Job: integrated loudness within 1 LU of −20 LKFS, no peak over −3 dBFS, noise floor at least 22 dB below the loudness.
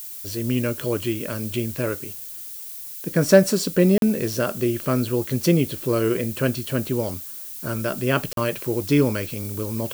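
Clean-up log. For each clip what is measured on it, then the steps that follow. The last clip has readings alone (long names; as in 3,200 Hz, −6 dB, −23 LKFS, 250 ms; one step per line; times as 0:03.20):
number of dropouts 2; longest dropout 42 ms; background noise floor −36 dBFS; target noise floor −45 dBFS; integrated loudness −23.0 LKFS; sample peak −2.0 dBFS; target loudness −20.0 LKFS
→ repair the gap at 0:03.98/0:08.33, 42 ms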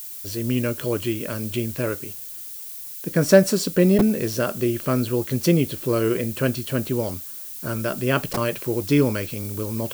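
number of dropouts 0; background noise floor −36 dBFS; target noise floor −45 dBFS
→ noise reduction from a noise print 9 dB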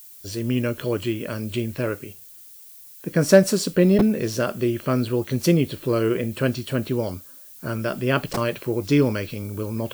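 background noise floor −45 dBFS; integrated loudness −23.0 LKFS; sample peak −2.0 dBFS; target loudness −20.0 LKFS
→ level +3 dB
brickwall limiter −3 dBFS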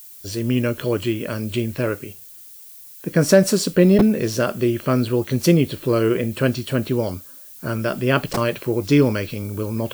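integrated loudness −20.0 LKFS; sample peak −3.0 dBFS; background noise floor −42 dBFS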